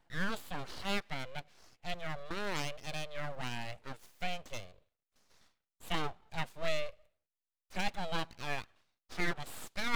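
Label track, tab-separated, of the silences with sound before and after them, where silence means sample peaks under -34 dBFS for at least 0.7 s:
4.600000	5.900000	silence
6.890000	7.760000	silence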